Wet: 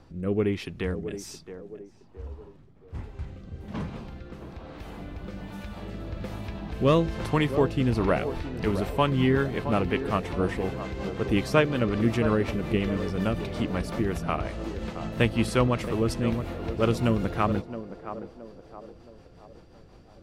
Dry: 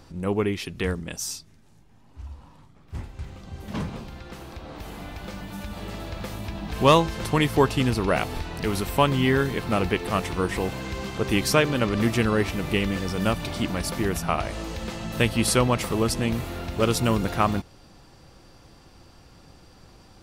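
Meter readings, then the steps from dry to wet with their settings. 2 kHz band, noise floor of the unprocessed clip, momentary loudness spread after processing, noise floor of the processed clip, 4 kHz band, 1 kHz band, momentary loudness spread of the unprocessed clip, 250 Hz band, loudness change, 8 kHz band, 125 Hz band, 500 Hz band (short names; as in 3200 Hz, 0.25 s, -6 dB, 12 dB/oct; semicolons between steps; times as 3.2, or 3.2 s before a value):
-4.5 dB, -53 dBFS, 19 LU, -52 dBFS, -7.5 dB, -5.0 dB, 18 LU, -1.0 dB, -2.5 dB, -13.0 dB, -1.0 dB, -1.5 dB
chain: high shelf 3900 Hz -11.5 dB; rotary speaker horn 1.2 Hz, later 5.5 Hz, at 7.87; narrowing echo 0.669 s, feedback 49%, band-pass 520 Hz, level -9 dB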